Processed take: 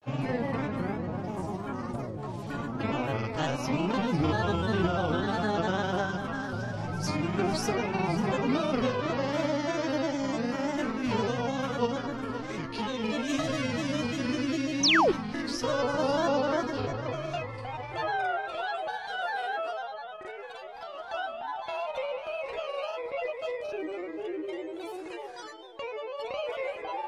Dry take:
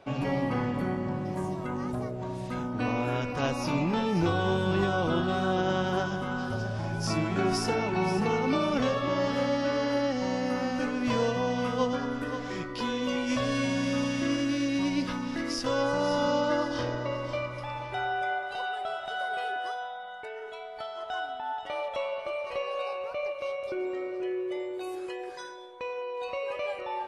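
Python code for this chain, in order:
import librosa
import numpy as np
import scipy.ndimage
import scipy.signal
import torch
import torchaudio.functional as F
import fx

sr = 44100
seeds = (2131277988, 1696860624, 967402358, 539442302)

y = fx.doubler(x, sr, ms=31.0, db=-12.5)
y = fx.granulator(y, sr, seeds[0], grain_ms=100.0, per_s=20.0, spray_ms=32.0, spread_st=3)
y = fx.spec_paint(y, sr, seeds[1], shape='fall', start_s=14.83, length_s=0.29, low_hz=310.0, high_hz=6600.0, level_db=-22.0)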